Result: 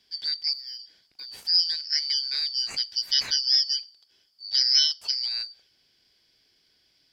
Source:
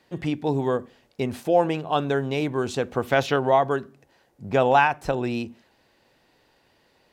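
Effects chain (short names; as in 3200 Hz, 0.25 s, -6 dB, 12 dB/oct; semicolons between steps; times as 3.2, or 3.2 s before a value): four-band scrambler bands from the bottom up 4321; 0.53–1.38 de-esser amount 90%; gain -3 dB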